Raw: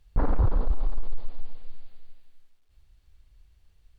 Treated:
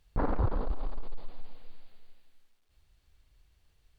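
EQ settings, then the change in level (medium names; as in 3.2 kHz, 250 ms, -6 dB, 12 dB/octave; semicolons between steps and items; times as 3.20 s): bass shelf 100 Hz -9 dB; 0.0 dB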